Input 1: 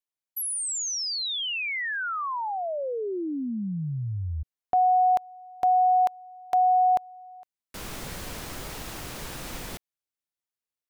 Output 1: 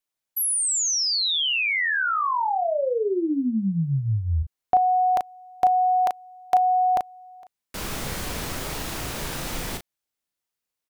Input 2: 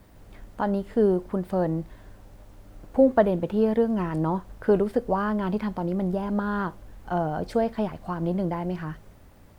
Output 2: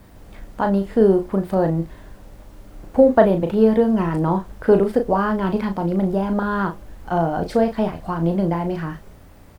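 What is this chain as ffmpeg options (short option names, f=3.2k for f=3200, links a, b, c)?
-filter_complex "[0:a]asplit=2[a][b];[b]adelay=36,volume=-6.5dB[c];[a][c]amix=inputs=2:normalize=0,volume=5.5dB"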